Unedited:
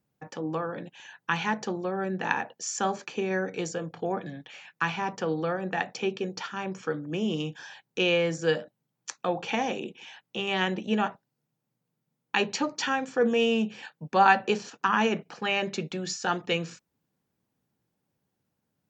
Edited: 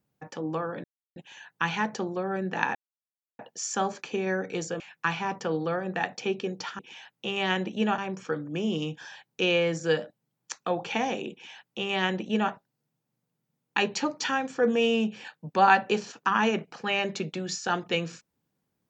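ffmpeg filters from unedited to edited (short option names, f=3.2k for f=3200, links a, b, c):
-filter_complex "[0:a]asplit=6[a][b][c][d][e][f];[a]atrim=end=0.84,asetpts=PTS-STARTPTS,afade=t=out:st=0.836:d=0.004:c=hsin,apad=pad_dur=0.32[g];[b]atrim=start=0.84:end=2.43,asetpts=PTS-STARTPTS,afade=t=in:d=0.004:c=hsin,afade=t=out:st=1.586:d=0.004:c=hsin,apad=pad_dur=0.64[h];[c]atrim=start=2.43:end=3.842,asetpts=PTS-STARTPTS,afade=t=in:d=0.004:c=hsin[i];[d]atrim=start=4.568:end=6.562[j];[e]atrim=start=9.898:end=11.092[k];[f]atrim=start=6.558[l];[g][h][i]concat=n=3:v=0:a=1[m];[m][j]acrossfade=d=0.004:c1=hsin:c2=hsin[n];[n][k]acrossfade=d=0.004:c1=hsin:c2=hsin[o];[o][l]acrossfade=d=0.004:c1=hsin:c2=hsin"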